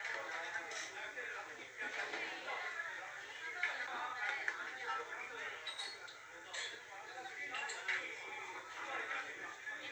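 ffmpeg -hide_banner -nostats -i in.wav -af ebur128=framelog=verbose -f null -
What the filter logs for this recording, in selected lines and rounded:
Integrated loudness:
  I:         -43.1 LUFS
  Threshold: -53.1 LUFS
Loudness range:
  LRA:         2.5 LU
  Threshold: -63.0 LUFS
  LRA low:   -44.3 LUFS
  LRA high:  -41.8 LUFS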